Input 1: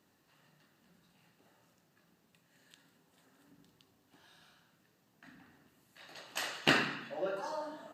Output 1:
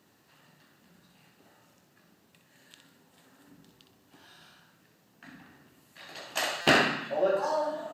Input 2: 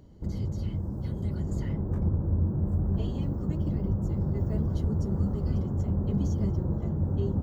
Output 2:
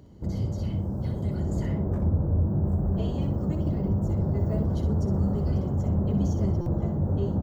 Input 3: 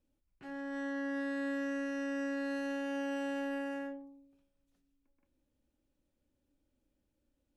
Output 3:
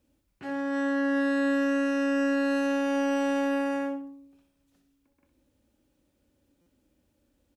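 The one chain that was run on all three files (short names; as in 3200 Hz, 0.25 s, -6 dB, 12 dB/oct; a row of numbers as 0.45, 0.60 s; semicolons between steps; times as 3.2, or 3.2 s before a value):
HPF 48 Hz 12 dB/oct; dynamic EQ 650 Hz, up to +6 dB, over -56 dBFS, Q 2.3; soft clip -18.5 dBFS; feedback echo 62 ms, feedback 25%, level -8 dB; stuck buffer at 6.61, samples 256, times 8; match loudness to -27 LUFS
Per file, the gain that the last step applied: +6.5, +3.0, +10.0 dB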